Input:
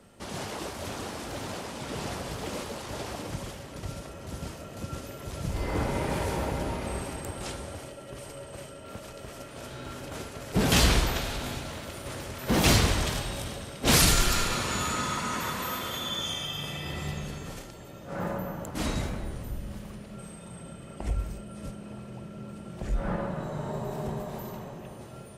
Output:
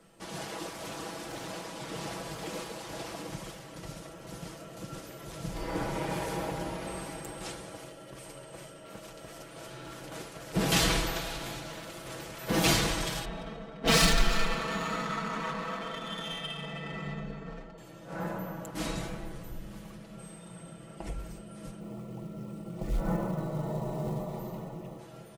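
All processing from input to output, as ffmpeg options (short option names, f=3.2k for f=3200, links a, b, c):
-filter_complex "[0:a]asettb=1/sr,asplit=3[a][b][c];[a]atrim=end=13.254[d];[b]atrim=start=13.25:end=17.78,asetpts=PTS-STARTPTS,afade=t=in:d=0.004:c=qsin,afade=t=out:st=4.526:d=0.004:c=qsin,aecho=1:1:4.5:0.87,atrim=end_sample=199773,adynamicsmooth=sensitivity=2.5:basefreq=1.5k[e];[c]atrim=start=17.776[f];[d][e]acrossfade=d=0.004:c1=hsin:c2=qsin[g];[g][f]acrossfade=d=0.004:c1=qsin:c2=hsin,asettb=1/sr,asplit=3[h][i][j];[h]atrim=end=21.804[k];[i]atrim=start=21.8:end=24.99,asetpts=PTS-STARTPTS,afade=t=in:d=0.004:c=qsin,afade=t=out:st=3.186:d=0.004:c=qsin,tiltshelf=f=1.1k:g=5,acrusher=bits=7:mode=log:mix=0:aa=0.000001,asuperstop=centerf=1600:order=20:qfactor=7.7[l];[j]atrim=start=24.986[m];[k][l]acrossfade=d=0.004:c1=hsin:c2=qsin[n];[n][m]acrossfade=d=0.004:c1=qsin:c2=hsin,equalizer=f=72:w=0.89:g=-7.5,aecho=1:1:6.1:0.65,volume=-4dB"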